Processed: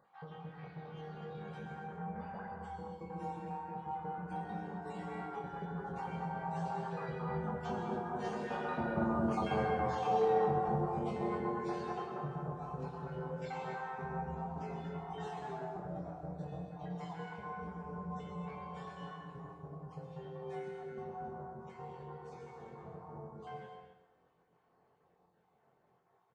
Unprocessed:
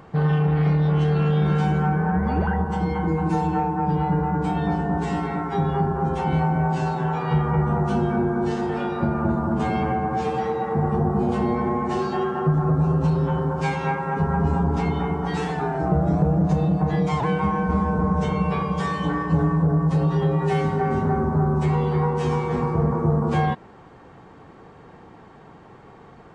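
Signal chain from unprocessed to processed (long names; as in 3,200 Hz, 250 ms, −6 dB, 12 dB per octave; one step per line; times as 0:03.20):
time-frequency cells dropped at random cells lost 31%
source passing by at 0:09.63, 11 m/s, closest 12 metres
in parallel at +1.5 dB: downward compressor, threshold −36 dBFS, peak gain reduction 15.5 dB
on the sum: parametric band 180 Hz +9 dB 1.6 octaves
flanger 0.44 Hz, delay 9.2 ms, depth 8.8 ms, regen +79%
low shelf with overshoot 380 Hz −9.5 dB, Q 1.5
double-tracking delay 23 ms −5 dB
repeating echo 128 ms, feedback 40%, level −12 dB
reverb whose tail is shaped and stops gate 300 ms flat, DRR 3.5 dB
level −7.5 dB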